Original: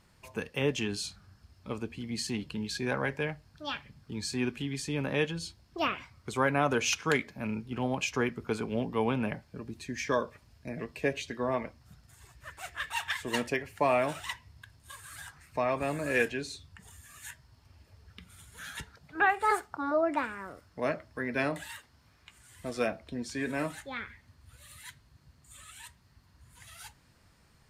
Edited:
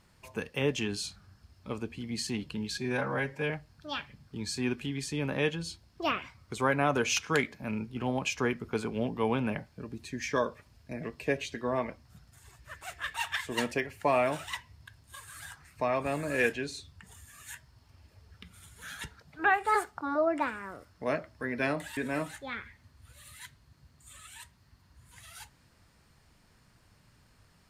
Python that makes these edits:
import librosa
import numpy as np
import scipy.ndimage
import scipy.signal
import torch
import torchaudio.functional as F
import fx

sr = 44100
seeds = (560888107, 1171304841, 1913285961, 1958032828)

y = fx.edit(x, sr, fx.stretch_span(start_s=2.78, length_s=0.48, factor=1.5),
    fx.cut(start_s=21.73, length_s=1.68), tone=tone)